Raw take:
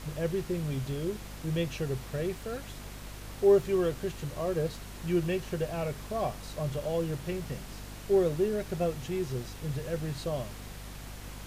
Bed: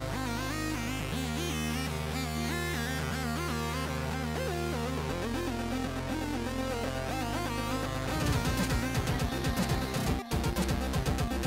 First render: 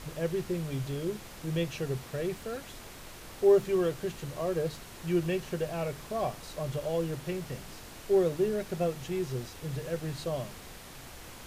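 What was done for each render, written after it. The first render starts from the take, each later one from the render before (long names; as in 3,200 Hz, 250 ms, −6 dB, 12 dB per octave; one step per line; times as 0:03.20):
mains-hum notches 50/100/150/200/250/300 Hz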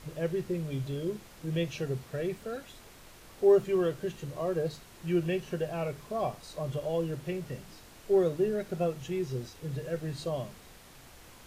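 noise reduction from a noise print 6 dB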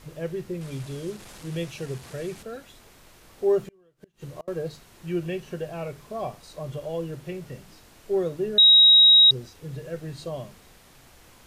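0:00.61–0:02.43: linear delta modulator 64 kbit/s, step −38.5 dBFS
0:03.65–0:04.48: gate with flip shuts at −27 dBFS, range −32 dB
0:08.58–0:09.31: beep over 3,810 Hz −10.5 dBFS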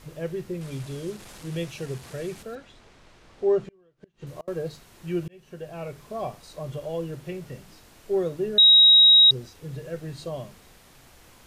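0:02.55–0:04.27: high-frequency loss of the air 91 metres
0:05.28–0:06.22: fade in equal-power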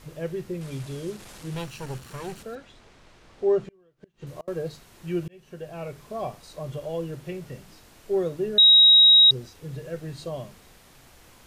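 0:01.54–0:02.40: lower of the sound and its delayed copy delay 0.71 ms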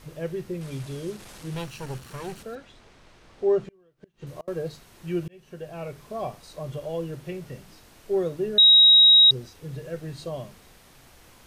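notch filter 7,200 Hz, Q 26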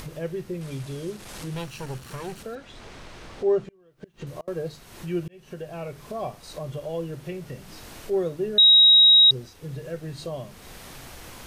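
upward compression, threshold −31 dBFS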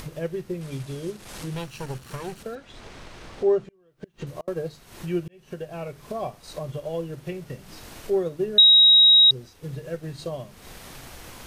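transient designer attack +3 dB, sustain −3 dB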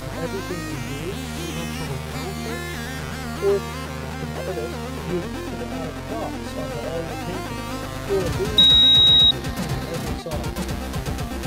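mix in bed +3 dB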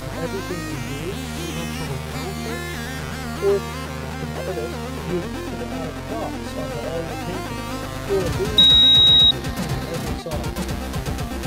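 level +1 dB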